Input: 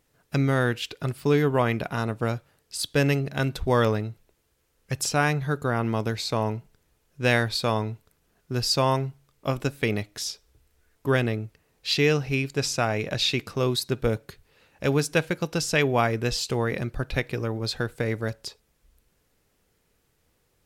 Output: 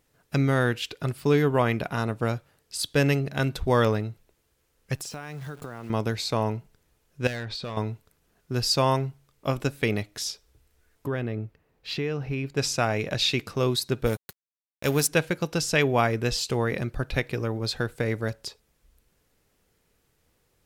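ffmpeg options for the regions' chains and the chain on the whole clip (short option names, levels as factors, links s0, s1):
-filter_complex "[0:a]asettb=1/sr,asplit=3[s0][s1][s2];[s0]atrim=end=4.964[s3];[s1]atrim=start=4.96:end=5.9,asetpts=PTS-STARTPTS,afade=t=in:d=0.004:c=qsin,afade=t=out:st=0.936:d=0.004:c=qsin,highpass=91,acrusher=bits=8:dc=4:mix=0:aa=0.000001,acompressor=threshold=0.0224:ratio=12:attack=3.2:release=140:knee=1:detection=peak[s4];[s2]atrim=start=5.896[s5];[s3][s4]acrossfade=d=0.004:c1=hsin:c2=qsin[s6];[s6][s5]acrossfade=d=0.004:c1=qsin:c2=hsin,asettb=1/sr,asplit=3[s7][s8][s9];[s7]atrim=end=7.274[s10];[s8]atrim=start=7.27:end=7.77,asetpts=PTS-STARTPTS,afade=t=in:d=0.004:c=qsin,afade=t=out:st=0.496:d=0.004:c=qsin,lowpass=5000,volume=10.6,asoftclip=hard,volume=0.0944,acompressor=threshold=0.0316:ratio=10:attack=3.2:release=140:knee=1:detection=peak[s11];[s9]atrim=start=7.766[s12];[s10][s11]acrossfade=d=0.004:c1=hsin:c2=qsin[s13];[s13][s12]acrossfade=d=0.004:c1=qsin:c2=hsin,asettb=1/sr,asplit=3[s14][s15][s16];[s14]atrim=end=11.074[s17];[s15]atrim=start=11.07:end=12.57,asetpts=PTS-STARTPTS,afade=t=in:d=0.004:c=qsin,afade=t=out:st=1.496:d=0.004:c=qsin,equalizer=f=8600:w=0.37:g=-13.5,acompressor=threshold=0.0562:ratio=4:attack=3.2:release=140:knee=1:detection=peak[s18];[s16]atrim=start=12.566[s19];[s17][s18]acrossfade=d=0.004:c1=hsin:c2=qsin[s20];[s20][s19]acrossfade=d=0.004:c1=qsin:c2=hsin,asettb=1/sr,asplit=3[s21][s22][s23];[s21]atrim=end=14.064[s24];[s22]atrim=start=14.06:end=15.08,asetpts=PTS-STARTPTS,afade=t=in:d=0.004:c=qsin,afade=t=out:st=1.016:d=0.004:c=qsin,aemphasis=mode=production:type=50fm,aeval=exprs='sgn(val(0))*max(abs(val(0))-0.0133,0)':c=same[s25];[s23]atrim=start=15.076[s26];[s24][s25]acrossfade=d=0.004:c1=hsin:c2=qsin[s27];[s27][s26]acrossfade=d=0.004:c1=qsin:c2=hsin"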